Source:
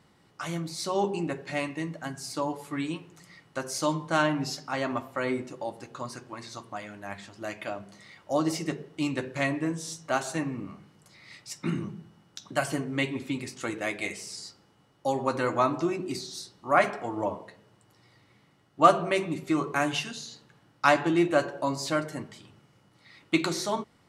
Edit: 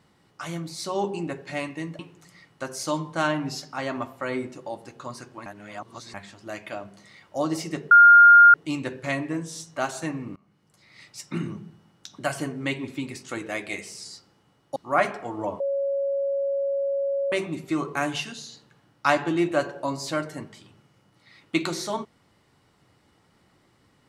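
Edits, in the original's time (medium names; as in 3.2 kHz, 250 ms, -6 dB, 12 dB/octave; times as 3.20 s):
1.99–2.94 s: delete
6.41–7.09 s: reverse
8.86 s: add tone 1.41 kHz -8 dBFS 0.63 s
10.68–11.38 s: fade in, from -23.5 dB
15.08–16.55 s: delete
17.39–19.11 s: bleep 555 Hz -22.5 dBFS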